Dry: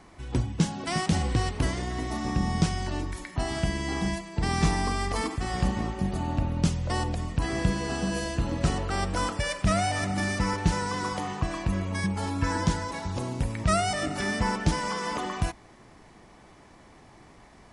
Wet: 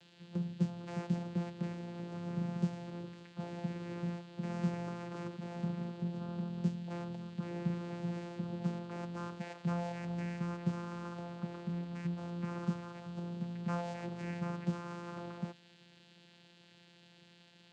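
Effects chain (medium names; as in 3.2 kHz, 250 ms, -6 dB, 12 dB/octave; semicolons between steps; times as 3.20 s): band noise 2.4–4.6 kHz -44 dBFS; vocoder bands 8, saw 173 Hz; trim -9 dB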